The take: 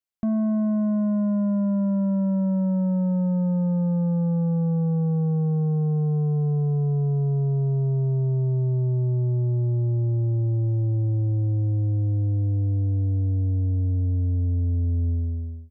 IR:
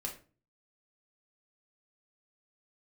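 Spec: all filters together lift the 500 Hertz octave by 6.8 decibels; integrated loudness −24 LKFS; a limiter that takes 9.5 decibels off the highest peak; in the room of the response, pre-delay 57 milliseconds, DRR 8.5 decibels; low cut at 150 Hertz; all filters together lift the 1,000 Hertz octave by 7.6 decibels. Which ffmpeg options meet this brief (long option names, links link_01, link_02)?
-filter_complex "[0:a]highpass=150,equalizer=frequency=500:width_type=o:gain=6.5,equalizer=frequency=1000:width_type=o:gain=7,alimiter=level_in=1dB:limit=-24dB:level=0:latency=1,volume=-1dB,asplit=2[link_01][link_02];[1:a]atrim=start_sample=2205,adelay=57[link_03];[link_02][link_03]afir=irnorm=-1:irlink=0,volume=-8.5dB[link_04];[link_01][link_04]amix=inputs=2:normalize=0,volume=7.5dB"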